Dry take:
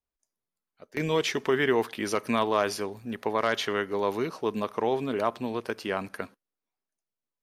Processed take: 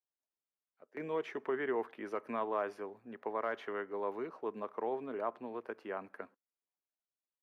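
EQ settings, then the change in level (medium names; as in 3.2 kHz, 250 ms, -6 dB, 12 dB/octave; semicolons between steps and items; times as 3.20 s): dynamic bell 4.2 kHz, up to -3 dB, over -43 dBFS, Q 1.5; high-pass 60 Hz; three-band isolator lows -15 dB, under 250 Hz, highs -21 dB, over 2.1 kHz; -9.0 dB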